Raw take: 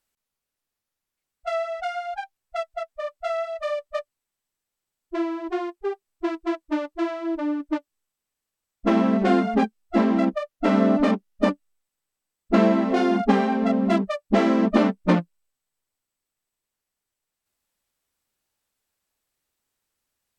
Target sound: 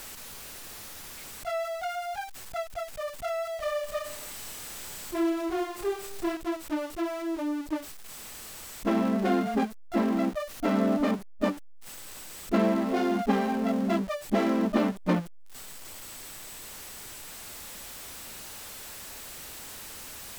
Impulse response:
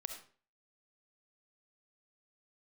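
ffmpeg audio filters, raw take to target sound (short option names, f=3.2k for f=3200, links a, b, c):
-filter_complex "[0:a]aeval=exprs='val(0)+0.5*0.0355*sgn(val(0))':c=same,asettb=1/sr,asplit=3[a][b][c];[a]atrim=end=3.564[d];[b]atrim=start=3.56:end=6.37,asetpts=PTS-STARTPTS,afade=t=in:d=0.004:c=qsin,afade=t=out:st=2.806:d=0.004:c=qsin,aecho=1:1:30|69|119.7|185.6|271.3:0.631|0.398|0.251|0.158|0.1,atrim=end_sample=123921[e];[c]atrim=start=6.366[f];[d][e]acrossfade=d=0.004:c1=hsin:c2=qsin[g];[g][f]acrossfade=d=0.004:c1=qsin:c2=hsin,volume=-7dB"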